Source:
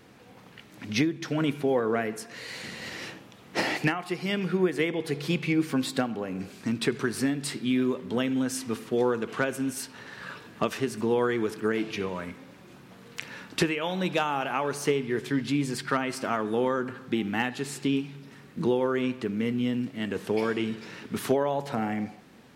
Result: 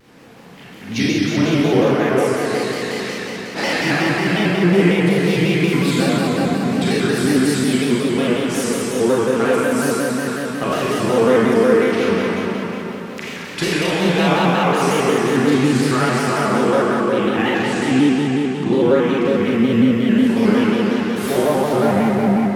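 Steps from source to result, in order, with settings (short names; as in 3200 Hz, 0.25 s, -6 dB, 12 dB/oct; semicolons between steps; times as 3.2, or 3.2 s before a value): 16.92–18.89 low-pass opened by the level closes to 2900 Hz, open at -23.5 dBFS; on a send: darkening echo 0.389 s, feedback 50%, low-pass 2000 Hz, level -4.5 dB; on the sum: Schroeder reverb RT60 3 s, combs from 29 ms, DRR -9 dB; shaped vibrato square 5.5 Hz, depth 100 cents; gain +1 dB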